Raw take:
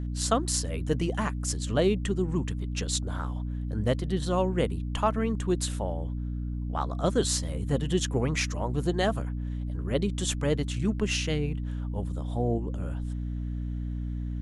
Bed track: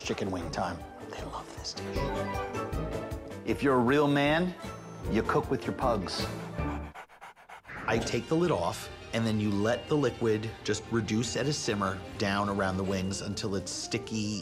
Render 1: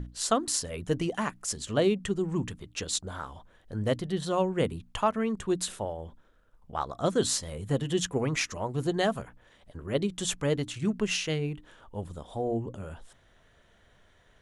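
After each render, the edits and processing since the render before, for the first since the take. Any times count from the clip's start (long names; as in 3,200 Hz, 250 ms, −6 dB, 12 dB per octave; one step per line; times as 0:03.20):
mains-hum notches 60/120/180/240/300 Hz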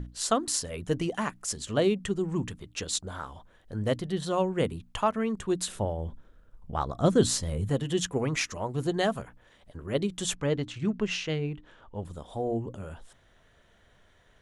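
0:05.75–0:07.70: low-shelf EQ 310 Hz +10 dB
0:10.35–0:12.05: high-frequency loss of the air 96 metres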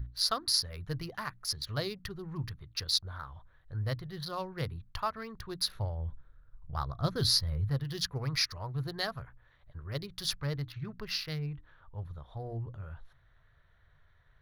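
adaptive Wiener filter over 9 samples
drawn EQ curve 140 Hz 0 dB, 200 Hz −17 dB, 490 Hz −13 dB, 790 Hz −10 dB, 1,200 Hz −3 dB, 1,900 Hz −3 dB, 3,000 Hz −9 dB, 4,700 Hz +13 dB, 7,800 Hz −21 dB, 11,000 Hz +7 dB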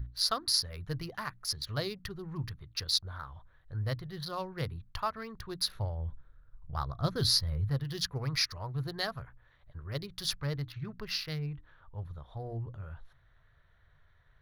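no processing that can be heard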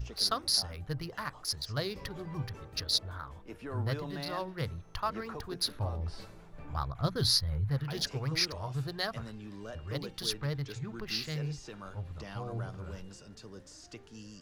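mix in bed track −16.5 dB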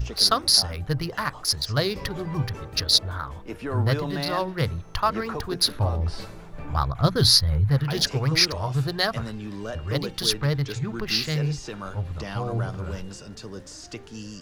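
level +10.5 dB
brickwall limiter −3 dBFS, peak gain reduction 1 dB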